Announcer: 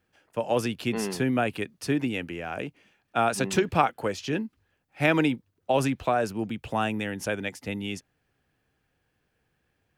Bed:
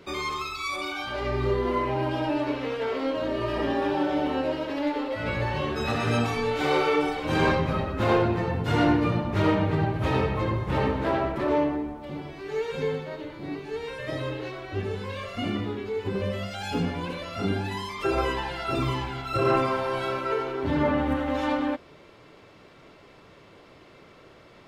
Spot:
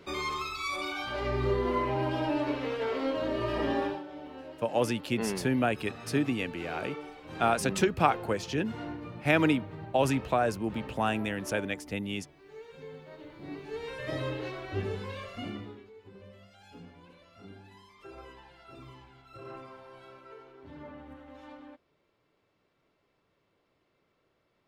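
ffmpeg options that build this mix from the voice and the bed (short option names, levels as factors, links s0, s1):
-filter_complex "[0:a]adelay=4250,volume=0.794[s0];[1:a]volume=4.22,afade=t=out:st=3.79:d=0.23:silence=0.177828,afade=t=in:st=12.88:d=1.28:silence=0.16788,afade=t=out:st=14.79:d=1.13:silence=0.1[s1];[s0][s1]amix=inputs=2:normalize=0"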